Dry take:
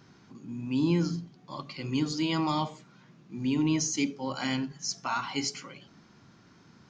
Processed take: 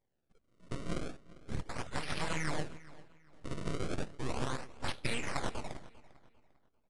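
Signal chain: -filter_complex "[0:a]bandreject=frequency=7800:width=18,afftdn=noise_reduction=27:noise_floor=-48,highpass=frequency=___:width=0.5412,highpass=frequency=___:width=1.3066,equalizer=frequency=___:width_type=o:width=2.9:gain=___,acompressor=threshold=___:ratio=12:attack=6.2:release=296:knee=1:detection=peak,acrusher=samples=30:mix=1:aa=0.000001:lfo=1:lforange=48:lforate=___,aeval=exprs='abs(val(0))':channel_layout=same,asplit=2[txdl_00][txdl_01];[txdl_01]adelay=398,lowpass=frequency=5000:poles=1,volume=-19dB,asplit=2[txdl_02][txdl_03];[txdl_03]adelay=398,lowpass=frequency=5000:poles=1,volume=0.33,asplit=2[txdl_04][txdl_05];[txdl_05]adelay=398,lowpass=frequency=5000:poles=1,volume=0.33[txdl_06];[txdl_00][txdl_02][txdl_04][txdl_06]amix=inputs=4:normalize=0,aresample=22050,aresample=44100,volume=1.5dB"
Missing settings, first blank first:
750, 750, 1500, 9, -29dB, 0.35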